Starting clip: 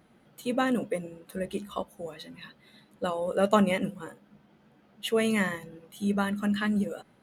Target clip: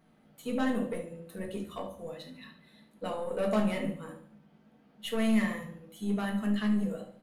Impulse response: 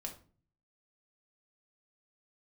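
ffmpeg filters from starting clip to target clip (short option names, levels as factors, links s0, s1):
-filter_complex "[0:a]aecho=1:1:72|144|216|288:0.251|0.098|0.0382|0.0149,aeval=exprs='(tanh(11.2*val(0)+0.25)-tanh(0.25))/11.2':c=same[s0];[1:a]atrim=start_sample=2205[s1];[s0][s1]afir=irnorm=-1:irlink=0,volume=0.841"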